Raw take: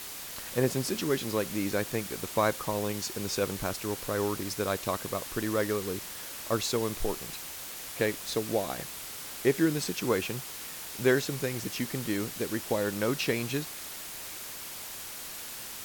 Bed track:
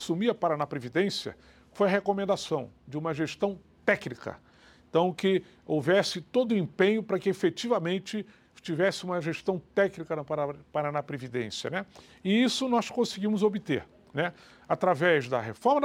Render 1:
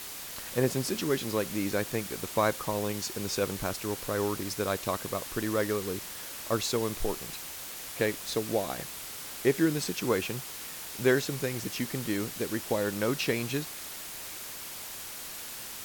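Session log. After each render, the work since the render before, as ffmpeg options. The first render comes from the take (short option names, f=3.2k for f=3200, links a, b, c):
-af anull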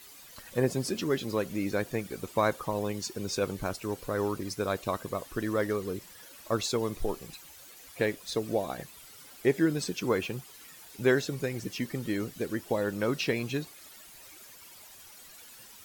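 -af "afftdn=nr=13:nf=-41"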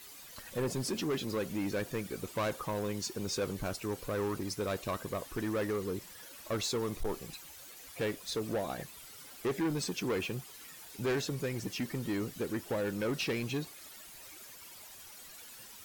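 -af "asoftclip=type=tanh:threshold=-28dB,acrusher=bits=7:mode=log:mix=0:aa=0.000001"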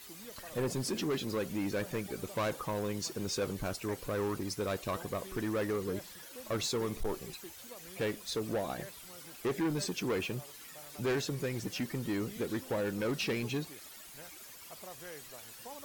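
-filter_complex "[1:a]volume=-25dB[a];[0:a][a]amix=inputs=2:normalize=0"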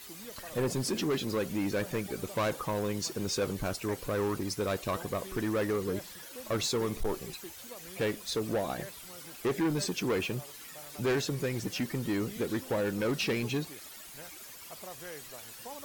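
-af "volume=3dB"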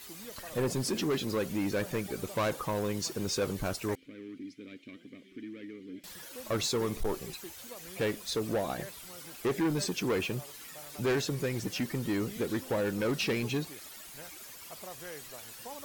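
-filter_complex "[0:a]asettb=1/sr,asplit=3[a][b][c];[a]atrim=end=3.954[d];[b]atrim=start=3.95:end=6.04,asetpts=PTS-STARTPTS,afade=t=in:d=0.004:c=qsin,afade=t=out:st=2.086:d=0.004:c=qsin,asplit=3[e][f][g];[e]bandpass=f=270:t=q:w=8,volume=0dB[h];[f]bandpass=f=2.29k:t=q:w=8,volume=-6dB[i];[g]bandpass=f=3.01k:t=q:w=8,volume=-9dB[j];[h][i][j]amix=inputs=3:normalize=0[k];[c]atrim=start=6.036[l];[d][k]acrossfade=d=0.004:c1=hsin:c2=qsin[m];[m][l]acrossfade=d=0.004:c1=qsin:c2=hsin"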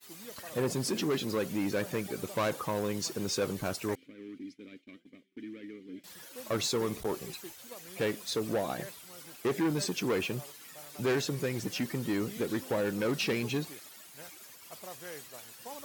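-af "highpass=100,agate=range=-33dB:threshold=-43dB:ratio=3:detection=peak"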